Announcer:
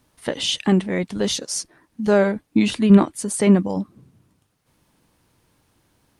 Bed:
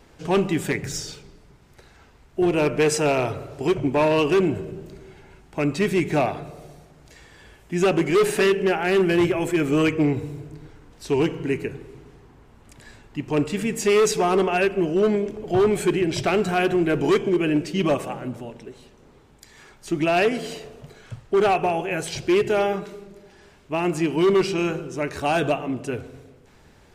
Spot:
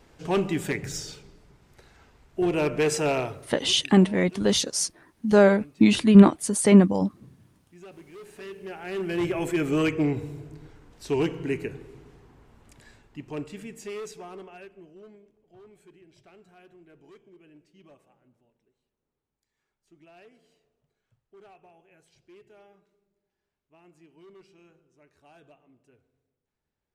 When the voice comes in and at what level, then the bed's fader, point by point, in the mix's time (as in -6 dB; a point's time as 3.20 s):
3.25 s, 0.0 dB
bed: 3.17 s -4 dB
3.90 s -27 dB
8.19 s -27 dB
9.39 s -4 dB
12.57 s -4 dB
15.43 s -33.5 dB